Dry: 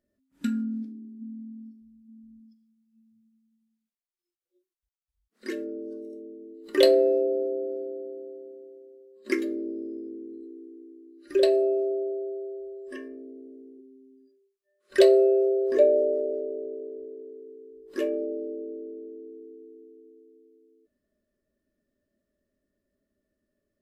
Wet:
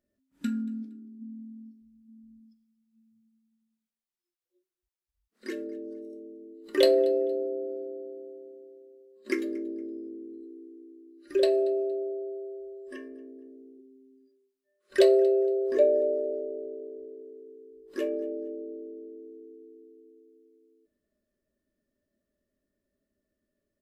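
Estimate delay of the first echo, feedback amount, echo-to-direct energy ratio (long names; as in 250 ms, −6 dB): 232 ms, repeats not evenly spaced, −23.0 dB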